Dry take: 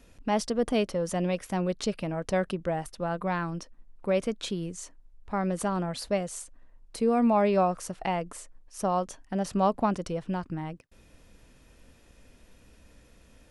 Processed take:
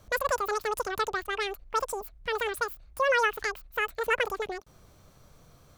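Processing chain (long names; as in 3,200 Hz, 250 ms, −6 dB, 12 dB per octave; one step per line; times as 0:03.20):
wrong playback speed 33 rpm record played at 78 rpm
level −1 dB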